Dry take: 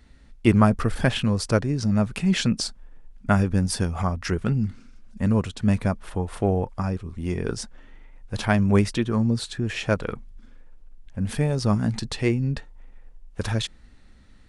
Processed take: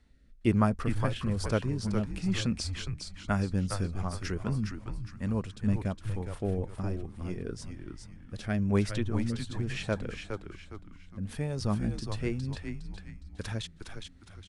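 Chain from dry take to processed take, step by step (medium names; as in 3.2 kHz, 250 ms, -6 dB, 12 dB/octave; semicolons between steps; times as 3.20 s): rotary cabinet horn 1.1 Hz; frequency-shifting echo 411 ms, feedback 37%, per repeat -100 Hz, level -5.5 dB; trim -7.5 dB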